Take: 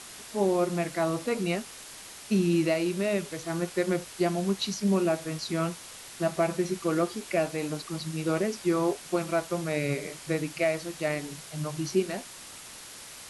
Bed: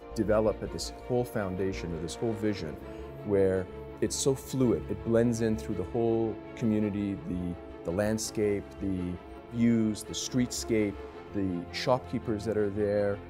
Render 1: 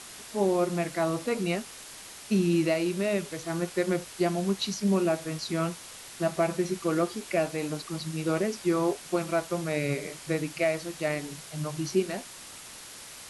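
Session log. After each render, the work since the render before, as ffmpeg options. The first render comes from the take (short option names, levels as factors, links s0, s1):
-af anull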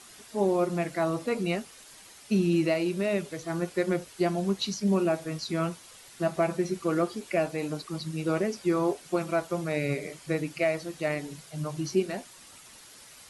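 -af "afftdn=nr=8:nf=-45"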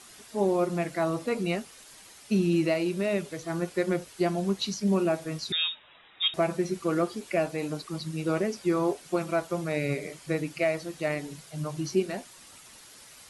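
-filter_complex "[0:a]asettb=1/sr,asplit=3[s0][s1][s2];[s0]atrim=end=5.524[s3];[s1]atrim=start=5.52:end=6.34,asetpts=PTS-STARTPTS,afade=t=in:d=0.004:c=qsin,afade=t=out:st=0.816:d=0.004:c=qsin,lowpass=f=3300:t=q:w=0.5098,lowpass=f=3300:t=q:w=0.6013,lowpass=f=3300:t=q:w=0.9,lowpass=f=3300:t=q:w=2.563,afreqshift=-3900[s4];[s2]atrim=start=6.336[s5];[s3][s4]acrossfade=d=0.004:c1=hsin:c2=qsin[s6];[s6][s5]acrossfade=d=0.004:c1=qsin:c2=hsin"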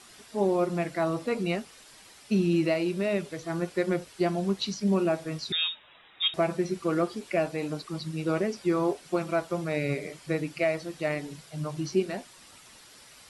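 -filter_complex "[0:a]acrossover=split=7200[s0][s1];[s1]acompressor=threshold=0.00141:ratio=4:attack=1:release=60[s2];[s0][s2]amix=inputs=2:normalize=0,bandreject=f=6500:w=19"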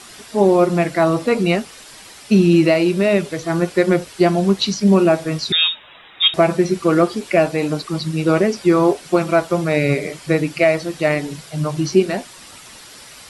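-af "volume=3.98,alimiter=limit=0.708:level=0:latency=1"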